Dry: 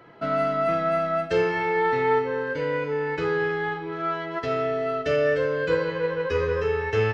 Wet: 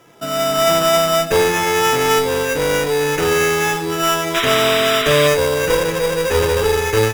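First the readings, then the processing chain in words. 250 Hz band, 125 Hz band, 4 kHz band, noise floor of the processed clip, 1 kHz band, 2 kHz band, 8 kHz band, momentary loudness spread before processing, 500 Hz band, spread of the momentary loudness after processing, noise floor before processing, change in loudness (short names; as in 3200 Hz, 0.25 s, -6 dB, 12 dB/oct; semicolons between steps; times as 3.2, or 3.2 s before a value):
+8.0 dB, +8.0 dB, +21.5 dB, -23 dBFS, +8.0 dB, +9.0 dB, n/a, 5 LU, +7.5 dB, 5 LU, -34 dBFS, +9.0 dB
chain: AGC gain up to 11.5 dB; sample-rate reducer 4300 Hz, jitter 0%; one-sided clip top -20 dBFS; painted sound noise, 4.34–5.28, 1000–4000 Hz -22 dBFS; gain +1 dB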